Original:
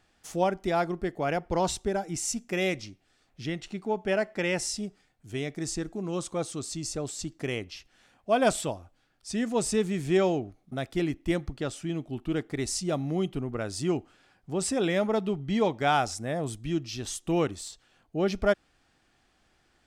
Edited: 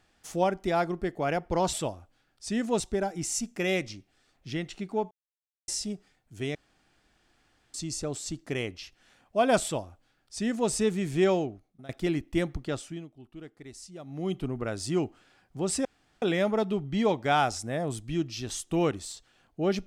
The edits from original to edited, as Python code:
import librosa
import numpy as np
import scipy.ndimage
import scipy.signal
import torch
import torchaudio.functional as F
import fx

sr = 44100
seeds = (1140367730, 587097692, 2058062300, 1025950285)

y = fx.edit(x, sr, fx.silence(start_s=4.04, length_s=0.57),
    fx.room_tone_fill(start_s=5.48, length_s=1.19),
    fx.duplicate(start_s=8.56, length_s=1.07, to_s=1.73),
    fx.fade_out_to(start_s=10.24, length_s=0.58, floor_db=-19.0),
    fx.fade_down_up(start_s=11.68, length_s=1.63, db=-15.0, fade_s=0.33),
    fx.insert_room_tone(at_s=14.78, length_s=0.37), tone=tone)